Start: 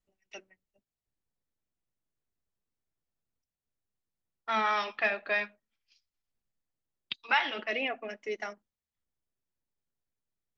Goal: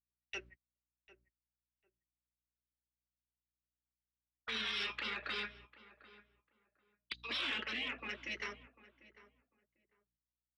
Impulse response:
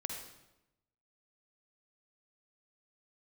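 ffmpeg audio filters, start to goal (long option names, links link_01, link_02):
-filter_complex "[0:a]acrossover=split=310 4800:gain=0.0891 1 0.0708[link_01][link_02][link_03];[link_01][link_02][link_03]amix=inputs=3:normalize=0,aeval=exprs='val(0)+0.000355*(sin(2*PI*60*n/s)+sin(2*PI*2*60*n/s)/2+sin(2*PI*3*60*n/s)/3+sin(2*PI*4*60*n/s)/4+sin(2*PI*5*60*n/s)/5)':channel_layout=same,agate=range=-38dB:threshold=-58dB:ratio=16:detection=peak,afftfilt=real='re*lt(hypot(re,im),0.0398)':imag='im*lt(hypot(re,im),0.0398)':win_size=1024:overlap=0.75,asplit=2[link_04][link_05];[link_05]alimiter=level_in=11dB:limit=-24dB:level=0:latency=1:release=227,volume=-11dB,volume=-0.5dB[link_06];[link_04][link_06]amix=inputs=2:normalize=0,asoftclip=type=tanh:threshold=-26.5dB,equalizer=frequency=720:width=1.3:gain=-13,asplit=2[link_07][link_08];[link_08]adelay=747,lowpass=frequency=1400:poles=1,volume=-16dB,asplit=2[link_09][link_10];[link_10]adelay=747,lowpass=frequency=1400:poles=1,volume=0.2[link_11];[link_07][link_09][link_11]amix=inputs=3:normalize=0,volume=2.5dB"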